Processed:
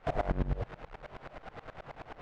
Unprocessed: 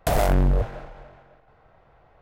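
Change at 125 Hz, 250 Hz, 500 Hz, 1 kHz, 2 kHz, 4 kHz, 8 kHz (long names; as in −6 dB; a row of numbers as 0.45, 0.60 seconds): −12.0 dB, −10.5 dB, −11.0 dB, −9.5 dB, −9.5 dB, −15.0 dB, below −25 dB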